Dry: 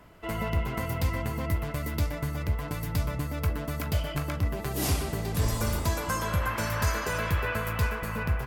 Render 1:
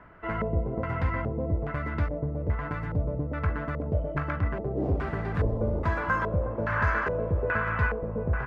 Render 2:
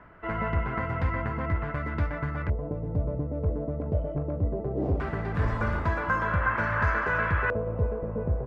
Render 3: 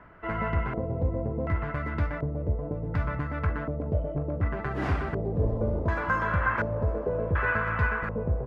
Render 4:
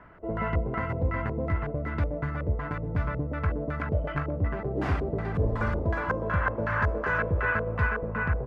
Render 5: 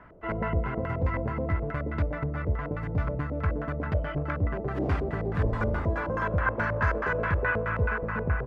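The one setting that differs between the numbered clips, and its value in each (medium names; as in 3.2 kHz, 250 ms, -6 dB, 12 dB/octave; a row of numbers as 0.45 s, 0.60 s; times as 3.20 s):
LFO low-pass, rate: 1.2 Hz, 0.2 Hz, 0.68 Hz, 2.7 Hz, 4.7 Hz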